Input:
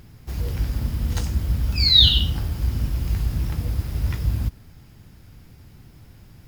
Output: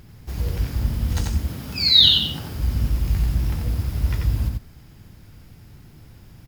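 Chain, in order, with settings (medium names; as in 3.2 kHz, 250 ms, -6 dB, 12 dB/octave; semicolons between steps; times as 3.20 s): 1.39–2.55 s: high-pass 160 Hz 12 dB/octave; delay 89 ms -4 dB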